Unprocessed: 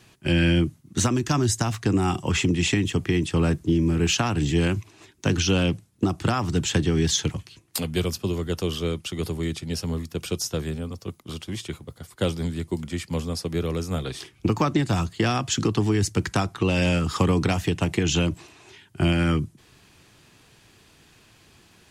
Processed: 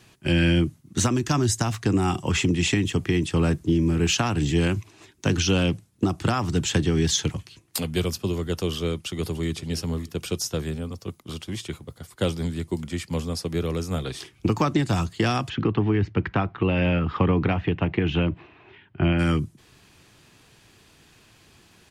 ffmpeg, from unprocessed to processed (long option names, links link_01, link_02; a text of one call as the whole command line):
ffmpeg -i in.wav -filter_complex "[0:a]asplit=2[link_01][link_02];[link_02]afade=type=in:start_time=9.05:duration=0.01,afade=type=out:start_time=9.53:duration=0.01,aecho=0:1:290|580|870:0.125893|0.050357|0.0201428[link_03];[link_01][link_03]amix=inputs=2:normalize=0,asplit=3[link_04][link_05][link_06];[link_04]afade=type=out:start_time=15.48:duration=0.02[link_07];[link_05]lowpass=frequency=2800:width=0.5412,lowpass=frequency=2800:width=1.3066,afade=type=in:start_time=15.48:duration=0.02,afade=type=out:start_time=19.18:duration=0.02[link_08];[link_06]afade=type=in:start_time=19.18:duration=0.02[link_09];[link_07][link_08][link_09]amix=inputs=3:normalize=0" out.wav